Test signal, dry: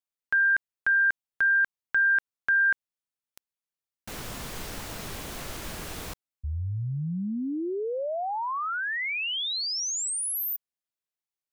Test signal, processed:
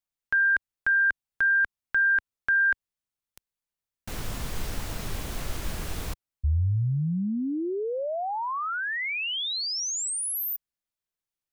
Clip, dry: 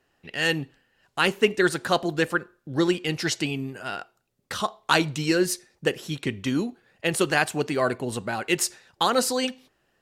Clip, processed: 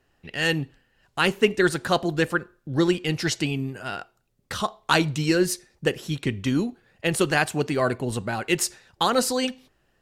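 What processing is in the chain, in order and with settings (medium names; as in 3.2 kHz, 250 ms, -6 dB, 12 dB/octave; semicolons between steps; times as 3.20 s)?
bass shelf 110 Hz +11.5 dB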